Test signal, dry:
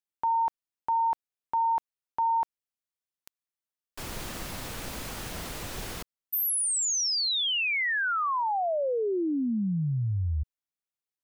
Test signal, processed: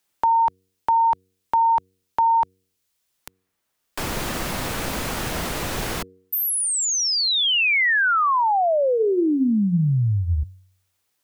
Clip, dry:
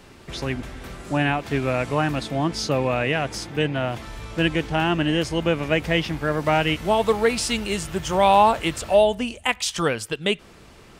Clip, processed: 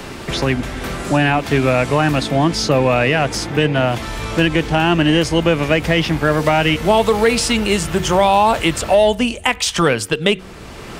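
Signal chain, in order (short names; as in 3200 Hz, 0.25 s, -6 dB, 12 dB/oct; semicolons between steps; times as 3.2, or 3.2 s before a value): in parallel at -8 dB: overloaded stage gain 17.5 dB; on the sum: de-hum 93.43 Hz, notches 5; maximiser +8.5 dB; three-band squash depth 40%; gain -3 dB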